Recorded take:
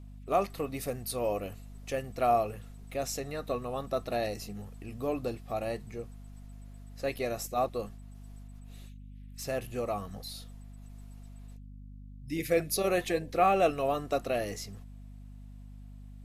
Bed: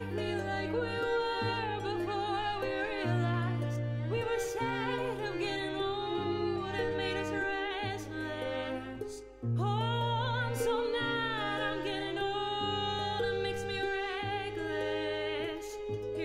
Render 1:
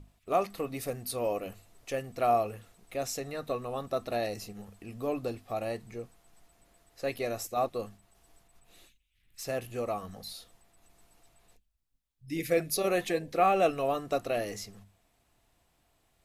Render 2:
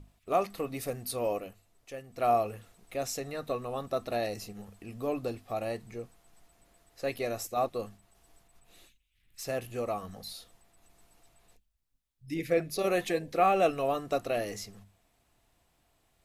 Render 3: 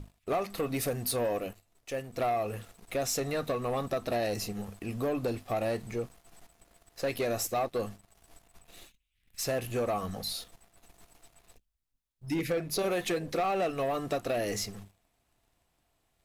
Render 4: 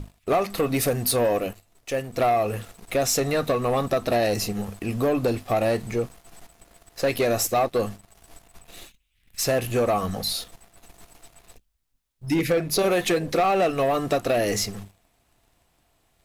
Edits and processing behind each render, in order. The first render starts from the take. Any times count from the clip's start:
hum notches 50/100/150/200/250 Hz
1.35–2.27 s: dip -8.5 dB, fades 0.18 s; 12.34–12.79 s: treble shelf 5.1 kHz -11 dB
compression 5:1, threshold -32 dBFS, peak gain reduction 11.5 dB; waveshaping leveller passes 2
trim +8.5 dB

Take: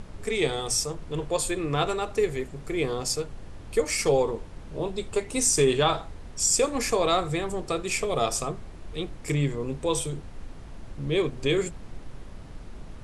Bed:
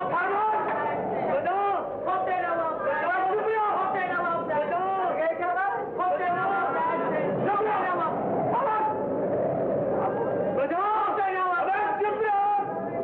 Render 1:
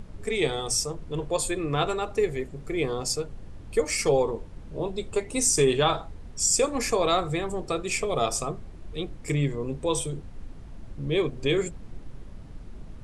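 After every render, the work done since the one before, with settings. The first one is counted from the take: noise reduction 6 dB, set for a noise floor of -43 dBFS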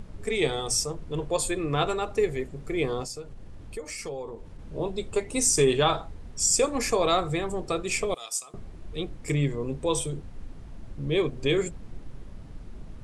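3.04–4.59 s: compression 2.5:1, threshold -38 dBFS; 8.14–8.54 s: differentiator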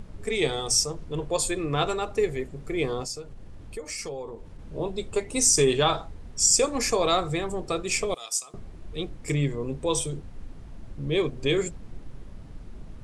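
dynamic bell 5.6 kHz, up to +5 dB, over -45 dBFS, Q 1.4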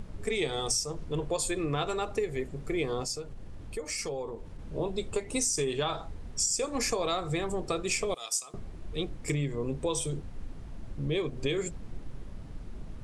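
compression 10:1, threshold -26 dBFS, peak gain reduction 10.5 dB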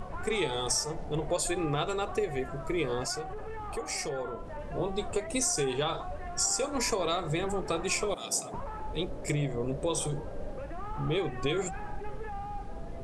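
add bed -16.5 dB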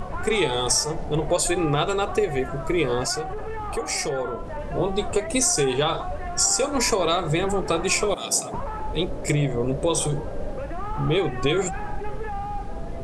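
trim +8 dB

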